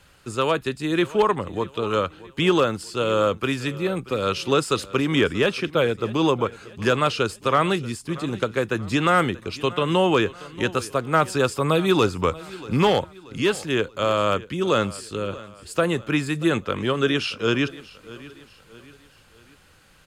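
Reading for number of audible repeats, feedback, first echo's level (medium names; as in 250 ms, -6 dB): 3, 44%, -19.0 dB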